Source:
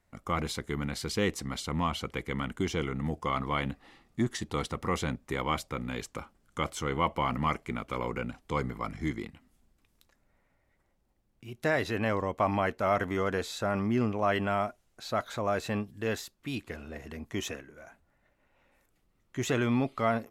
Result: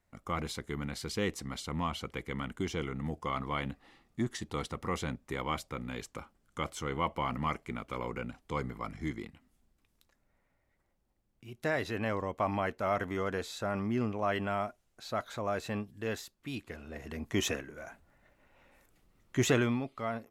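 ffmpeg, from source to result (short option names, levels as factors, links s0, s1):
-af "volume=1.68,afade=t=in:st=16.83:d=0.67:silence=0.375837,afade=t=out:st=19.4:d=0.4:silence=0.237137"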